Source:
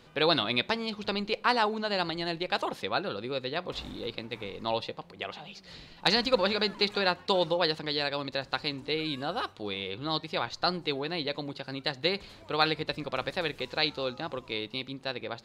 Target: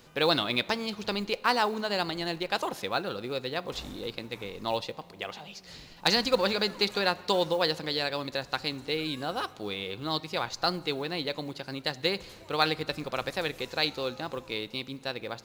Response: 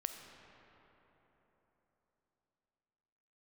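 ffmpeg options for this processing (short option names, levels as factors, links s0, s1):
-filter_complex "[0:a]aexciter=amount=1.4:drive=8.9:freq=5400,asplit=2[s0][s1];[1:a]atrim=start_sample=2205,asetrate=70560,aresample=44100[s2];[s1][s2]afir=irnorm=-1:irlink=0,volume=0.398[s3];[s0][s3]amix=inputs=2:normalize=0,acrusher=bits=7:mode=log:mix=0:aa=0.000001,volume=0.841"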